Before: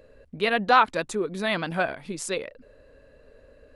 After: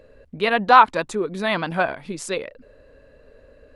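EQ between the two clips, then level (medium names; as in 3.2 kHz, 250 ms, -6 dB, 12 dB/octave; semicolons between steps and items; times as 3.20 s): treble shelf 6.8 kHz -5.5 dB; dynamic bell 970 Hz, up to +6 dB, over -38 dBFS, Q 2.5; +3.0 dB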